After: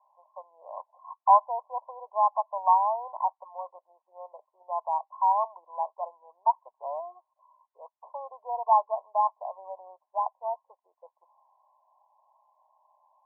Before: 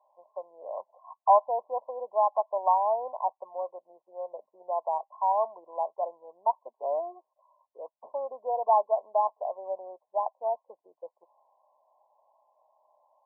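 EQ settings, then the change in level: resonant high-pass 1000 Hz, resonance Q 2.2; air absorption 470 m; 0.0 dB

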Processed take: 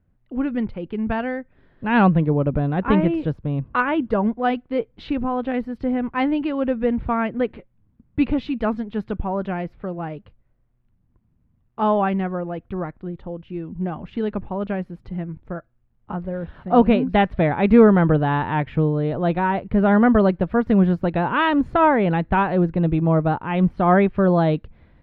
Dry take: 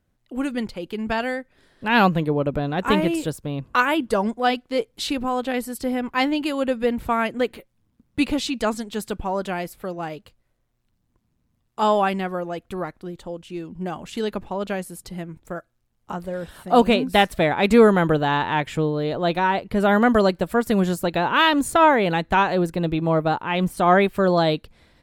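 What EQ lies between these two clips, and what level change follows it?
air absorption 280 m; tone controls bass +7 dB, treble -14 dB; 0.0 dB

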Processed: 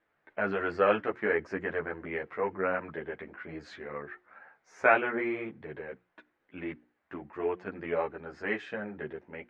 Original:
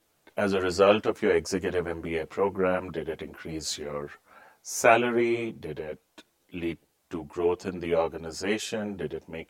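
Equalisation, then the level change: synth low-pass 1800 Hz, resonance Q 2.8; low shelf 89 Hz -7 dB; notches 60/120/180/240/300/360 Hz; -6.0 dB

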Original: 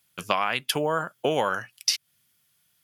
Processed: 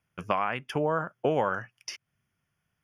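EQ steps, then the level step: running mean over 11 samples; low shelf 84 Hz +11.5 dB; -1.5 dB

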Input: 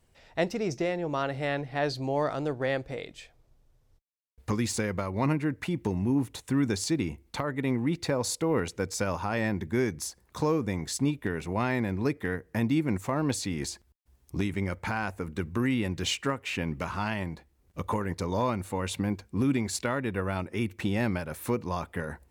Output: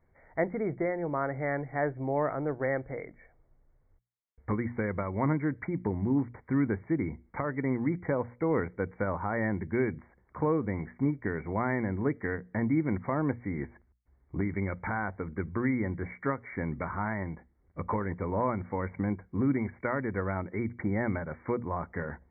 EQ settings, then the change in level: brick-wall FIR low-pass 2300 Hz; notches 60/120/180/240 Hz; -1.0 dB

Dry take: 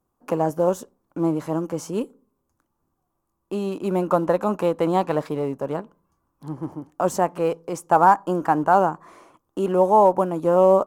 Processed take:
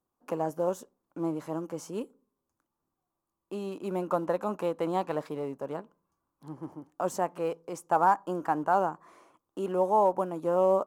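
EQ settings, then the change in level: low shelf 130 Hz -8.5 dB; -8.0 dB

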